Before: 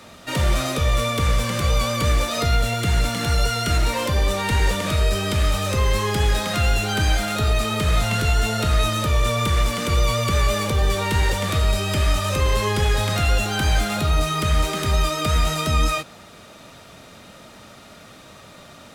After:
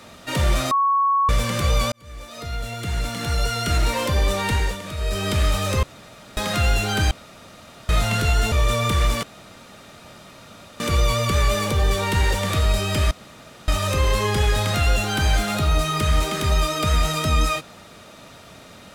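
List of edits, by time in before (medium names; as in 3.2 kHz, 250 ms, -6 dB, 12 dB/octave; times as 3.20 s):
0.71–1.29 s: bleep 1.11 kHz -15.5 dBFS
1.92–3.89 s: fade in
4.48–5.28 s: dip -9.5 dB, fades 0.32 s
5.83–6.37 s: room tone
7.11–7.89 s: room tone
8.52–9.08 s: delete
9.79 s: insert room tone 1.57 s
12.10 s: insert room tone 0.57 s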